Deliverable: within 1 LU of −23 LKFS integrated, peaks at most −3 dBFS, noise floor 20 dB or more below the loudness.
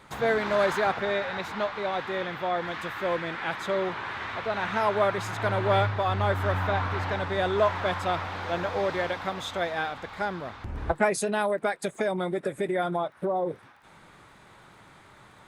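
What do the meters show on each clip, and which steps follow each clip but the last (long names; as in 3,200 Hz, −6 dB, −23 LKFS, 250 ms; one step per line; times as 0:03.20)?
crackle rate 20 per second; integrated loudness −28.0 LKFS; sample peak −9.0 dBFS; target loudness −23.0 LKFS
→ click removal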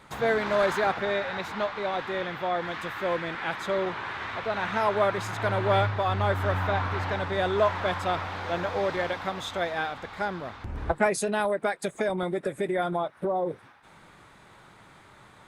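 crackle rate 0.065 per second; integrated loudness −28.0 LKFS; sample peak −9.0 dBFS; target loudness −23.0 LKFS
→ level +5 dB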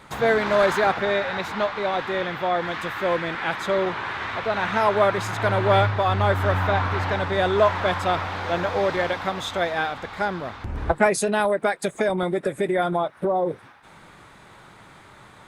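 integrated loudness −23.0 LKFS; sample peak −4.0 dBFS; background noise floor −49 dBFS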